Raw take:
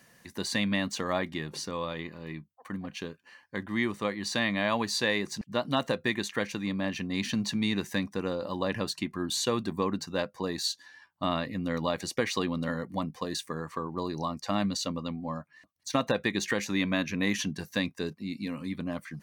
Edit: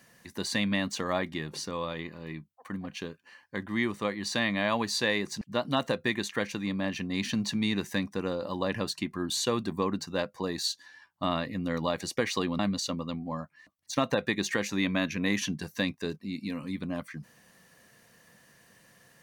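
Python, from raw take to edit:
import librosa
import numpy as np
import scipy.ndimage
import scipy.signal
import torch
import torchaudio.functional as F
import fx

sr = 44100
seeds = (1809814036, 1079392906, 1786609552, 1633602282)

y = fx.edit(x, sr, fx.cut(start_s=12.59, length_s=1.97), tone=tone)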